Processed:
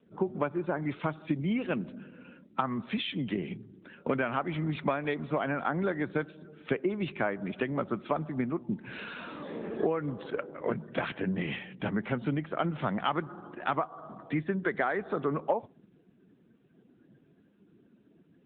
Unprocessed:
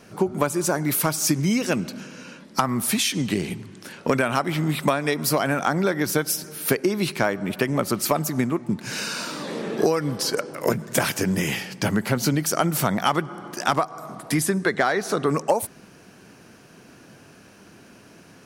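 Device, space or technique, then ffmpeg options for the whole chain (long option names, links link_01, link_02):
mobile call with aggressive noise cancelling: -af "highpass=110,afftdn=noise_reduction=17:noise_floor=-42,volume=-7.5dB" -ar 8000 -c:a libopencore_amrnb -b:a 10200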